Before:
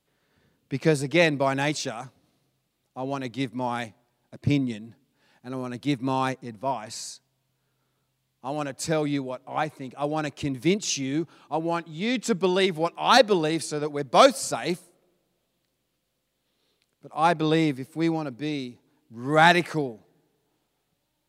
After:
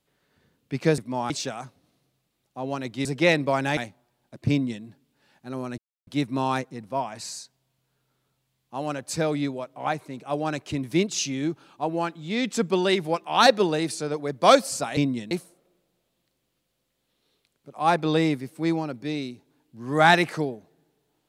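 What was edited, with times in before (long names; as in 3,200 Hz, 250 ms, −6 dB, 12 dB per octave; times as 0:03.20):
0:00.98–0:01.70: swap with 0:03.45–0:03.77
0:04.50–0:04.84: duplicate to 0:14.68
0:05.78: splice in silence 0.29 s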